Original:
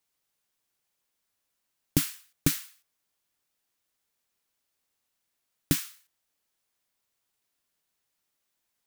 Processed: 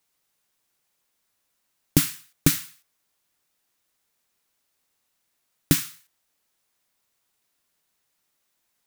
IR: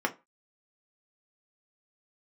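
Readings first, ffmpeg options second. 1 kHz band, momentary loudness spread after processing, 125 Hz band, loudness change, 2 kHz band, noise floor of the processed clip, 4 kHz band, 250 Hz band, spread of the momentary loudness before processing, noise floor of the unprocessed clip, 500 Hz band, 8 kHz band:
+6.0 dB, 11 LU, +6.0 dB, +5.5 dB, +6.0 dB, −75 dBFS, +5.5 dB, +5.5 dB, 11 LU, −81 dBFS, +5.5 dB, +5.5 dB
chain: -filter_complex "[0:a]asplit=2[link_01][link_02];[link_02]equalizer=frequency=440:width=0.33:gain=-13[link_03];[1:a]atrim=start_sample=2205,asetrate=28665,aresample=44100[link_04];[link_03][link_04]afir=irnorm=-1:irlink=0,volume=-20dB[link_05];[link_01][link_05]amix=inputs=2:normalize=0,volume=5dB"

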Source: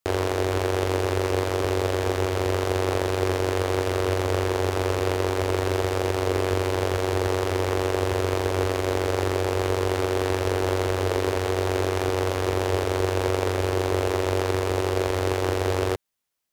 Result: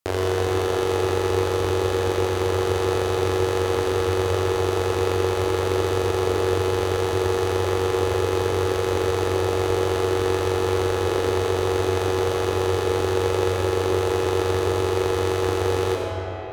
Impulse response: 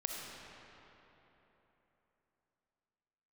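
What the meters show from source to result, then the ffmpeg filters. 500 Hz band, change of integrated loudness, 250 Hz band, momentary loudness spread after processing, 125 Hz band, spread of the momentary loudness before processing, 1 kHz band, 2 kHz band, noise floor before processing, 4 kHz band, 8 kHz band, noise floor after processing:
+3.0 dB, +2.0 dB, +2.5 dB, 1 LU, +0.5 dB, 1 LU, +2.0 dB, +0.5 dB, −27 dBFS, +2.0 dB, +1.5 dB, −25 dBFS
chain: -filter_complex "[1:a]atrim=start_sample=2205,asetrate=37485,aresample=44100[link_01];[0:a][link_01]afir=irnorm=-1:irlink=0"

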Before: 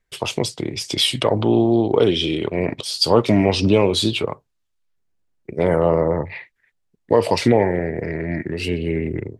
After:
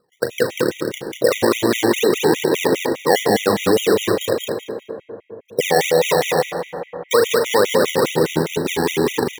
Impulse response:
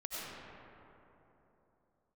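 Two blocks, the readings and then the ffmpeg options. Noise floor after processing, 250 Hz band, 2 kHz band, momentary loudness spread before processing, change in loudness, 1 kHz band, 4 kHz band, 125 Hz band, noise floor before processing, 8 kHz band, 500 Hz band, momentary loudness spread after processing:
−53 dBFS, −1.5 dB, +7.0 dB, 10 LU, +1.0 dB, +4.0 dB, −1.5 dB, −6.0 dB, −71 dBFS, +6.5 dB, +2.5 dB, 11 LU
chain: -filter_complex "[0:a]agate=range=-41dB:threshold=-26dB:ratio=16:detection=peak,highpass=frequency=120:width=0.5412,highpass=frequency=120:width=1.3066,acompressor=threshold=-20dB:ratio=2.5,lowpass=frequency=500:width_type=q:width=4.7,acompressor=mode=upward:threshold=-32dB:ratio=2.5,flanger=delay=8.5:depth=3.9:regen=-87:speed=2:shape=sinusoidal,acrusher=samples=24:mix=1:aa=0.000001:lfo=1:lforange=24:lforate=2.3,asplit=2[link_01][link_02];[link_02]adelay=38,volume=-11dB[link_03];[link_01][link_03]amix=inputs=2:normalize=0,aecho=1:1:192|384|576:0.562|0.118|0.0248,asplit=2[link_04][link_05];[1:a]atrim=start_sample=2205[link_06];[link_05][link_06]afir=irnorm=-1:irlink=0,volume=-8.5dB[link_07];[link_04][link_07]amix=inputs=2:normalize=0,alimiter=level_in=9.5dB:limit=-1dB:release=50:level=0:latency=1,afftfilt=real='re*gt(sin(2*PI*4.9*pts/sr)*(1-2*mod(floor(b*sr/1024/1900),2)),0)':imag='im*gt(sin(2*PI*4.9*pts/sr)*(1-2*mod(floor(b*sr/1024/1900),2)),0)':win_size=1024:overlap=0.75,volume=-4dB"

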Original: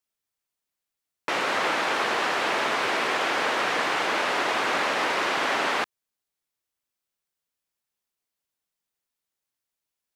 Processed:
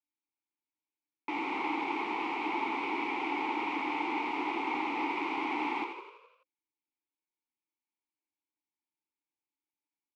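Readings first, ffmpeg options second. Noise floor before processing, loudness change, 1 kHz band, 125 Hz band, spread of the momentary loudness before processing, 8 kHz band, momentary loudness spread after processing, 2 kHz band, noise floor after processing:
below −85 dBFS, −8.5 dB, −6.5 dB, below −10 dB, 2 LU, below −20 dB, 4 LU, −11.0 dB, below −85 dBFS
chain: -filter_complex "[0:a]asplit=3[link_01][link_02][link_03];[link_01]bandpass=frequency=300:width_type=q:width=8,volume=0dB[link_04];[link_02]bandpass=frequency=870:width_type=q:width=8,volume=-6dB[link_05];[link_03]bandpass=frequency=2240:width_type=q:width=8,volume=-9dB[link_06];[link_04][link_05][link_06]amix=inputs=3:normalize=0,asplit=8[link_07][link_08][link_09][link_10][link_11][link_12][link_13][link_14];[link_08]adelay=84,afreqshift=31,volume=-7dB[link_15];[link_09]adelay=168,afreqshift=62,volume=-11.7dB[link_16];[link_10]adelay=252,afreqshift=93,volume=-16.5dB[link_17];[link_11]adelay=336,afreqshift=124,volume=-21.2dB[link_18];[link_12]adelay=420,afreqshift=155,volume=-25.9dB[link_19];[link_13]adelay=504,afreqshift=186,volume=-30.7dB[link_20];[link_14]adelay=588,afreqshift=217,volume=-35.4dB[link_21];[link_07][link_15][link_16][link_17][link_18][link_19][link_20][link_21]amix=inputs=8:normalize=0,volume=4.5dB"

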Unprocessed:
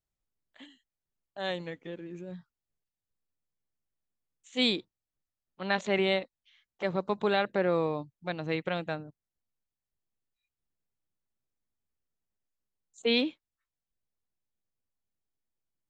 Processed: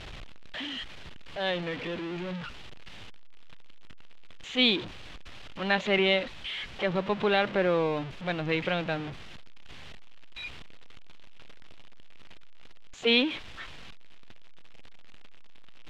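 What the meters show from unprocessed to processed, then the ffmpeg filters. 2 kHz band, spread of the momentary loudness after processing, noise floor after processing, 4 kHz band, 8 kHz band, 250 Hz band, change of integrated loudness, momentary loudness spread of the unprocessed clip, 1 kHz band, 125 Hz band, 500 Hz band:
+5.5 dB, 23 LU, −43 dBFS, +5.5 dB, can't be measured, +2.5 dB, +2.0 dB, 15 LU, +2.5 dB, +3.5 dB, +2.0 dB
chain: -af "aeval=exprs='val(0)+0.5*0.0211*sgn(val(0))':channel_layout=same,lowpass=frequency=3100:width_type=q:width=1.9"

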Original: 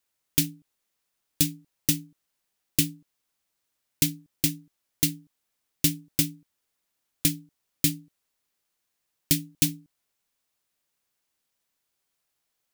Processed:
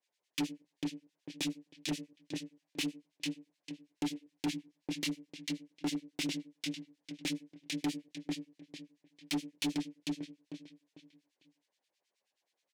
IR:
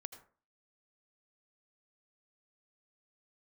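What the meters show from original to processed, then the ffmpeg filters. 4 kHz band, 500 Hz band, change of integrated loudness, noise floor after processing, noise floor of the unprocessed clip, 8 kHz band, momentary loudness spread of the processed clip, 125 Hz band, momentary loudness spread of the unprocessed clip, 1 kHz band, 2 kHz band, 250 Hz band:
−7.0 dB, −0.5 dB, −13.0 dB, below −85 dBFS, −80 dBFS, −16.5 dB, 13 LU, −14.0 dB, 5 LU, can't be measured, −3.5 dB, −3.5 dB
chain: -filter_complex "[0:a]aeval=exprs='if(lt(val(0),0),0.708*val(0),val(0))':channel_layout=same,lowpass=5700,asplit=2[link_01][link_02];[1:a]atrim=start_sample=2205,asetrate=66150,aresample=44100[link_03];[link_02][link_03]afir=irnorm=-1:irlink=0,volume=-4.5dB[link_04];[link_01][link_04]amix=inputs=2:normalize=0,acontrast=39,highpass=330,equalizer=frequency=1300:width_type=o:width=0.33:gain=-12,asplit=2[link_05][link_06];[link_06]adelay=24,volume=-5dB[link_07];[link_05][link_07]amix=inputs=2:normalize=0,asplit=2[link_08][link_09];[link_09]adelay=448,lowpass=frequency=4000:poles=1,volume=-4.5dB,asplit=2[link_10][link_11];[link_11]adelay=448,lowpass=frequency=4000:poles=1,volume=0.33,asplit=2[link_12][link_13];[link_13]adelay=448,lowpass=frequency=4000:poles=1,volume=0.33,asplit=2[link_14][link_15];[link_15]adelay=448,lowpass=frequency=4000:poles=1,volume=0.33[link_16];[link_08][link_10][link_12][link_14][link_16]amix=inputs=5:normalize=0,acrossover=split=3000[link_17][link_18];[link_18]acompressor=threshold=-31dB:ratio=4:attack=1:release=60[link_19];[link_17][link_19]amix=inputs=2:normalize=0,acrossover=split=1500[link_20][link_21];[link_20]aeval=exprs='val(0)*(1-1/2+1/2*cos(2*PI*9.4*n/s))':channel_layout=same[link_22];[link_21]aeval=exprs='val(0)*(1-1/2-1/2*cos(2*PI*9.4*n/s))':channel_layout=same[link_23];[link_22][link_23]amix=inputs=2:normalize=0,equalizer=frequency=540:width_type=o:width=0.71:gain=3,volume=26dB,asoftclip=hard,volume=-26dB,volume=-3dB"

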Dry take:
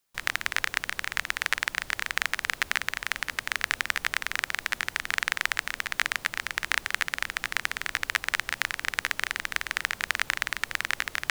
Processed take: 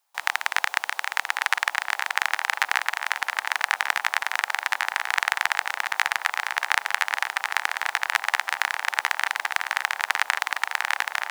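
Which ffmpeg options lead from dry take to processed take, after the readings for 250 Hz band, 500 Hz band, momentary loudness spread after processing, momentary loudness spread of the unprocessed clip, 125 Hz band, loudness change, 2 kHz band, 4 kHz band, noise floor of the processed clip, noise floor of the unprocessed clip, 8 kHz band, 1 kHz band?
below −10 dB, +4.0 dB, 3 LU, 3 LU, below −25 dB, +4.0 dB, +4.0 dB, +2.0 dB, −46 dBFS, −49 dBFS, +1.5 dB, +9.0 dB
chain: -filter_complex "[0:a]highpass=frequency=820:width_type=q:width=4.3,asplit=2[link_01][link_02];[link_02]adelay=1112,lowpass=frequency=1400:poles=1,volume=-5dB,asplit=2[link_03][link_04];[link_04]adelay=1112,lowpass=frequency=1400:poles=1,volume=0.54,asplit=2[link_05][link_06];[link_06]adelay=1112,lowpass=frequency=1400:poles=1,volume=0.54,asplit=2[link_07][link_08];[link_08]adelay=1112,lowpass=frequency=1400:poles=1,volume=0.54,asplit=2[link_09][link_10];[link_10]adelay=1112,lowpass=frequency=1400:poles=1,volume=0.54,asplit=2[link_11][link_12];[link_12]adelay=1112,lowpass=frequency=1400:poles=1,volume=0.54,asplit=2[link_13][link_14];[link_14]adelay=1112,lowpass=frequency=1400:poles=1,volume=0.54[link_15];[link_01][link_03][link_05][link_07][link_09][link_11][link_13][link_15]amix=inputs=8:normalize=0,volume=1.5dB"

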